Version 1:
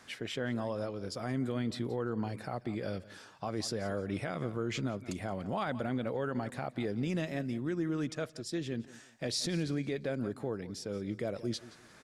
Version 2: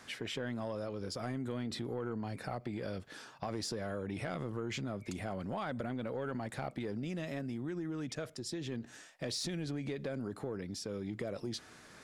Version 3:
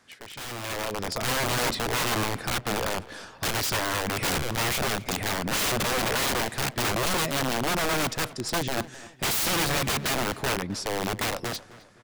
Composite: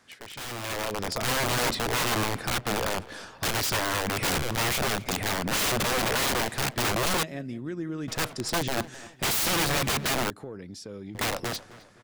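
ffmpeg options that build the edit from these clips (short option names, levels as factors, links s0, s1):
-filter_complex "[2:a]asplit=3[s0][s1][s2];[s0]atrim=end=7.232[s3];[0:a]atrim=start=7.228:end=8.082[s4];[s1]atrim=start=8.078:end=10.302[s5];[1:a]atrim=start=10.298:end=11.152[s6];[s2]atrim=start=11.148[s7];[s3][s4]acrossfade=d=0.004:c1=hsin:c2=hsin[s8];[s8][s5]acrossfade=d=0.004:c1=hsin:c2=hsin[s9];[s9][s6]acrossfade=d=0.004:c1=hsin:c2=hsin[s10];[s10][s7]acrossfade=d=0.004:c1=hsin:c2=hsin"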